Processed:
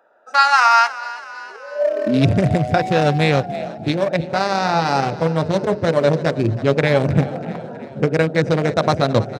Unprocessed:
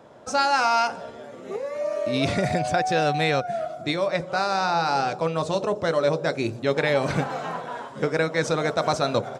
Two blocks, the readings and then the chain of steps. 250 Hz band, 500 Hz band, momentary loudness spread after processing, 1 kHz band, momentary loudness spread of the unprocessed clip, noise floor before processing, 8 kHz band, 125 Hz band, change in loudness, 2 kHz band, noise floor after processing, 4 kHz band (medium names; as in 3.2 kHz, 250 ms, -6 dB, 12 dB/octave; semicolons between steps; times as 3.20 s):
+9.0 dB, +5.5 dB, 14 LU, +5.5 dB, 9 LU, -41 dBFS, +1.0 dB, +11.5 dB, +6.5 dB, +5.5 dB, -37 dBFS, +3.5 dB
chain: local Wiener filter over 41 samples; high-pass sweep 1.2 kHz -> 97 Hz, 1.63–2.31 s; frequency-shifting echo 321 ms, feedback 57%, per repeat +35 Hz, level -17 dB; trim +7 dB